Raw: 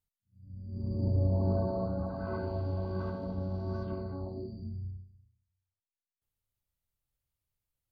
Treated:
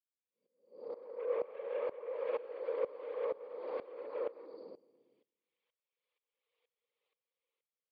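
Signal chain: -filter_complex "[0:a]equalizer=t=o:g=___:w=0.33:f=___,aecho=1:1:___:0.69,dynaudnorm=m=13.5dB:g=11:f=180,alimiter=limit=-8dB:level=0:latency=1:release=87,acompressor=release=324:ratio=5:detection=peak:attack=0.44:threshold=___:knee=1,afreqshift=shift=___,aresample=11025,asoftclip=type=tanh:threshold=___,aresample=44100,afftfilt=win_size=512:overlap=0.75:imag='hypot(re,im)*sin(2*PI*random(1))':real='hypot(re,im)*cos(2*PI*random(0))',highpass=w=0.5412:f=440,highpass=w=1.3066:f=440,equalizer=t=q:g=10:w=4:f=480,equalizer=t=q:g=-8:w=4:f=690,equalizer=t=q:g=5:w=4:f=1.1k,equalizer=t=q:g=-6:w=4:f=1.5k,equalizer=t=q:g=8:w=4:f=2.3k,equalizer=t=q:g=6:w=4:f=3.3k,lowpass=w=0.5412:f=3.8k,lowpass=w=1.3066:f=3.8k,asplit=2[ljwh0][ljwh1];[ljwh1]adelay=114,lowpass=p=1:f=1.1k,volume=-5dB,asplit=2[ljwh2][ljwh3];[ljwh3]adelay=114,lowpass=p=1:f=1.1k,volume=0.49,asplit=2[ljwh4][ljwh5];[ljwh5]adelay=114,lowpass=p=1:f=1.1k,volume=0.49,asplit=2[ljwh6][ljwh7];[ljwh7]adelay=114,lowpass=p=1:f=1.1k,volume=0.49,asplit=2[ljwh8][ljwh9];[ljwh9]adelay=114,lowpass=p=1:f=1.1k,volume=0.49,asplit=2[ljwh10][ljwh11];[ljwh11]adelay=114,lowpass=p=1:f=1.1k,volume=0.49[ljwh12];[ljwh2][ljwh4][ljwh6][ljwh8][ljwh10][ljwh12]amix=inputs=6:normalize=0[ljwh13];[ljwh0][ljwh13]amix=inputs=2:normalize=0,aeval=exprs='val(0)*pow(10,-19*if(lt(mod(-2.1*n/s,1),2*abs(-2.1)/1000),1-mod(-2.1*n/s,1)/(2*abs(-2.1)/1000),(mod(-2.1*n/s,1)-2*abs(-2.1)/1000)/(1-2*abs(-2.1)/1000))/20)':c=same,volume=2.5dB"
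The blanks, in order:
9.5, 580, 5.7, -23dB, -56, -29dB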